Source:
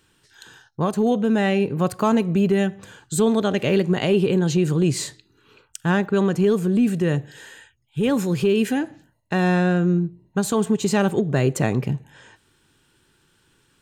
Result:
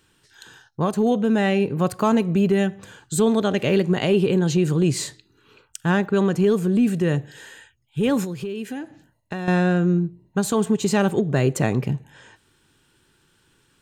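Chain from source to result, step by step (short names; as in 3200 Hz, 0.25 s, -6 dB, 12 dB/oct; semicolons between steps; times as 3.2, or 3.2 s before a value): 8.24–9.48 compressor 4:1, threshold -29 dBFS, peak gain reduction 12 dB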